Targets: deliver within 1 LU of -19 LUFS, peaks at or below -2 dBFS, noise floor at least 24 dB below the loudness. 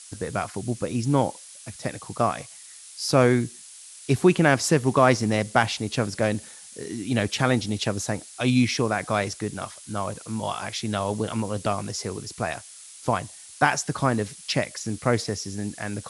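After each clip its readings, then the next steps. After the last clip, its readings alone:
noise floor -45 dBFS; noise floor target -49 dBFS; loudness -25.0 LUFS; peak level -3.5 dBFS; loudness target -19.0 LUFS
-> noise print and reduce 6 dB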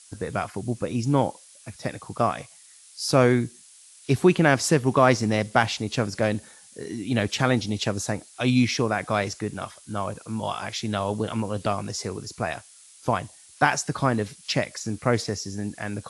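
noise floor -51 dBFS; loudness -25.0 LUFS; peak level -3.5 dBFS; loudness target -19.0 LUFS
-> trim +6 dB; peak limiter -2 dBFS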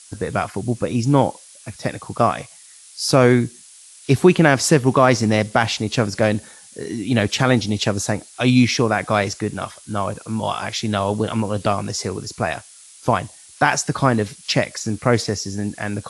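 loudness -19.5 LUFS; peak level -2.0 dBFS; noise floor -45 dBFS

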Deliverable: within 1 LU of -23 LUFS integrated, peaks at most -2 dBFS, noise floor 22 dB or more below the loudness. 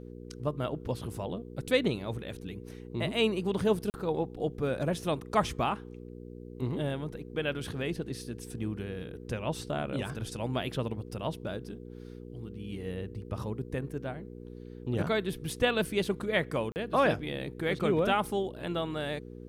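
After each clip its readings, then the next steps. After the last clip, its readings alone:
dropouts 2; longest dropout 39 ms; hum 60 Hz; highest harmonic 480 Hz; hum level -42 dBFS; loudness -32.5 LUFS; peak level -12.5 dBFS; loudness target -23.0 LUFS
-> interpolate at 3.90/16.72 s, 39 ms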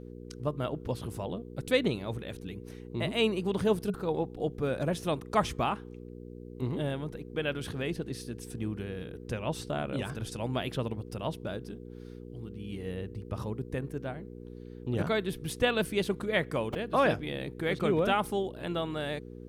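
dropouts 0; hum 60 Hz; highest harmonic 480 Hz; hum level -42 dBFS
-> de-hum 60 Hz, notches 8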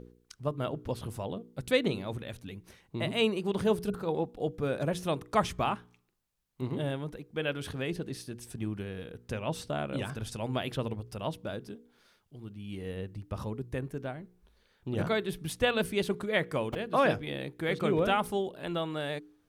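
hum not found; loudness -33.0 LUFS; peak level -13.0 dBFS; loudness target -23.0 LUFS
-> trim +10 dB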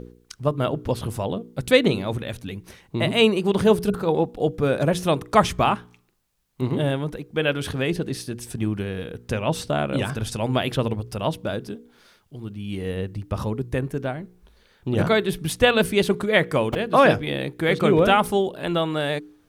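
loudness -23.0 LUFS; peak level -3.0 dBFS; noise floor -60 dBFS

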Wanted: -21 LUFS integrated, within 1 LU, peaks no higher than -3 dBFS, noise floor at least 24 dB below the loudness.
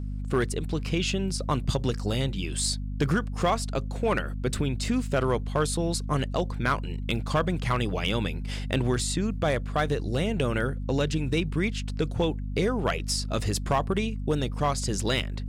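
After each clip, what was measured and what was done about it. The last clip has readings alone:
clipped samples 0.4%; clipping level -16.5 dBFS; hum 50 Hz; highest harmonic 250 Hz; hum level -30 dBFS; loudness -28.0 LUFS; peak level -16.5 dBFS; loudness target -21.0 LUFS
-> clip repair -16.5 dBFS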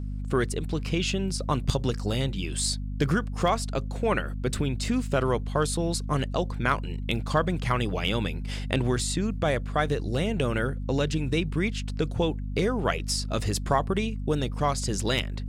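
clipped samples 0.0%; hum 50 Hz; highest harmonic 250 Hz; hum level -30 dBFS
-> hum notches 50/100/150/200/250 Hz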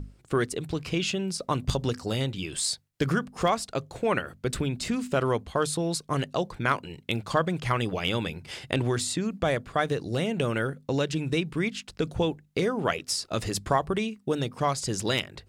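hum not found; loudness -28.5 LUFS; peak level -9.0 dBFS; loudness target -21.0 LUFS
-> trim +7.5 dB; peak limiter -3 dBFS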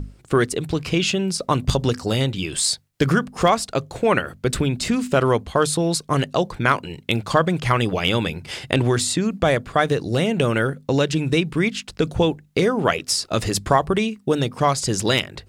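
loudness -21.0 LUFS; peak level -3.0 dBFS; noise floor -52 dBFS

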